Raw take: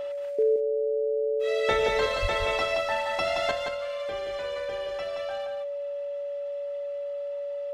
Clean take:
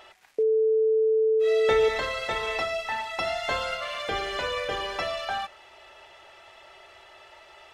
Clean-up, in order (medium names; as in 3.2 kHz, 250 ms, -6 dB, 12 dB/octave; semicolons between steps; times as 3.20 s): band-stop 570 Hz, Q 30; 2.21–2.33 s: high-pass 140 Hz 24 dB/octave; inverse comb 174 ms -5 dB; trim 0 dB, from 3.51 s +10 dB